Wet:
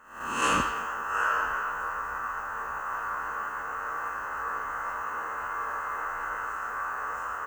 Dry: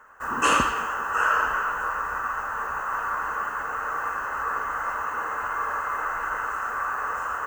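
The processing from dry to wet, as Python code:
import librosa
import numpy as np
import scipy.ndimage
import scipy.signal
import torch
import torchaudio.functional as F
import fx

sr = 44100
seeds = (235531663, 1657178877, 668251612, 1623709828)

y = fx.spec_swells(x, sr, rise_s=0.58)
y = y * librosa.db_to_amplitude(-6.5)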